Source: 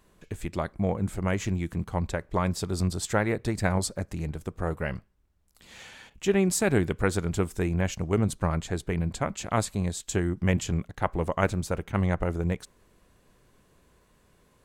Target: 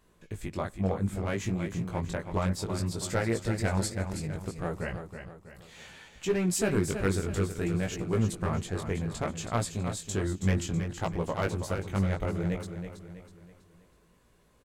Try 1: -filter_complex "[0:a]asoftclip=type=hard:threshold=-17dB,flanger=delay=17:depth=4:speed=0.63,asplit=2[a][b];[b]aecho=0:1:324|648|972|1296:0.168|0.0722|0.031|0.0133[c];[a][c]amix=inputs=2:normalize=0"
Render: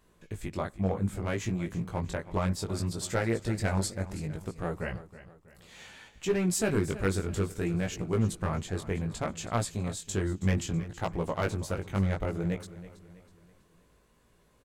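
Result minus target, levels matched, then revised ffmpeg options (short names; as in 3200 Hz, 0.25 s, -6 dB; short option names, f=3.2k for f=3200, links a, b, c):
echo-to-direct -7 dB
-filter_complex "[0:a]asoftclip=type=hard:threshold=-17dB,flanger=delay=17:depth=4:speed=0.63,asplit=2[a][b];[b]aecho=0:1:324|648|972|1296|1620:0.376|0.162|0.0695|0.0299|0.0128[c];[a][c]amix=inputs=2:normalize=0"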